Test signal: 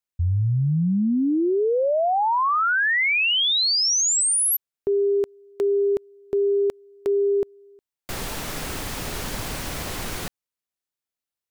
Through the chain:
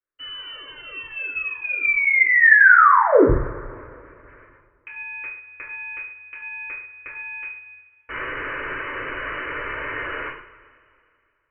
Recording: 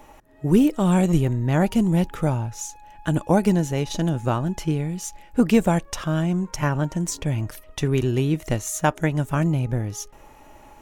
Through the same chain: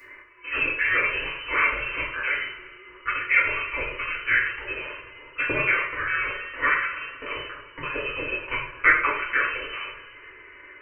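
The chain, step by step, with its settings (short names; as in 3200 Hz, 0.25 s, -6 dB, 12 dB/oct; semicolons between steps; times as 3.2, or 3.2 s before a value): in parallel at -9.5 dB: companded quantiser 4-bit; on the sum: inverted band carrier 2900 Hz; fixed phaser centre 760 Hz, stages 6; two-slope reverb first 0.51 s, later 2.4 s, from -20 dB, DRR -8 dB; gain -1 dB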